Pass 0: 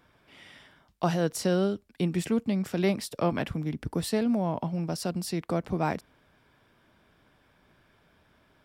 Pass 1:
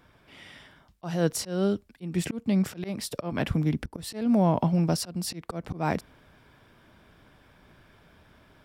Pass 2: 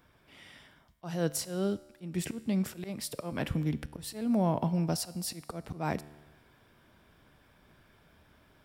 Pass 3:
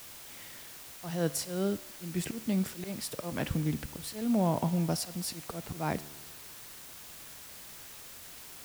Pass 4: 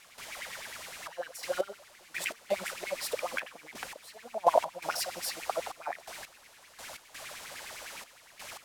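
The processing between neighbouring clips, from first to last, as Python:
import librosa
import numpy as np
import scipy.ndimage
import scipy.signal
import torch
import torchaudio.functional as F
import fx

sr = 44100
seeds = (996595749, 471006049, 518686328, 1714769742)

y1 = fx.low_shelf(x, sr, hz=140.0, db=4.5)
y1 = fx.rider(y1, sr, range_db=10, speed_s=2.0)
y1 = fx.auto_swell(y1, sr, attack_ms=270.0)
y1 = F.gain(torch.from_numpy(y1), 4.5).numpy()
y2 = fx.high_shelf(y1, sr, hz=9300.0, db=7.5)
y2 = fx.comb_fb(y2, sr, f0_hz=74.0, decay_s=1.2, harmonics='all', damping=0.0, mix_pct=50)
y3 = fx.quant_dither(y2, sr, seeds[0], bits=8, dither='triangular')
y4 = fx.filter_lfo_highpass(y3, sr, shape='sine', hz=9.8, low_hz=540.0, high_hz=2400.0, q=5.8)
y4 = fx.step_gate(y4, sr, bpm=84, pattern='.xxxxx..x...x', floor_db=-12.0, edge_ms=4.5)
y4 = np.interp(np.arange(len(y4)), np.arange(len(y4))[::2], y4[::2])
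y4 = F.gain(torch.from_numpy(y4), 2.5).numpy()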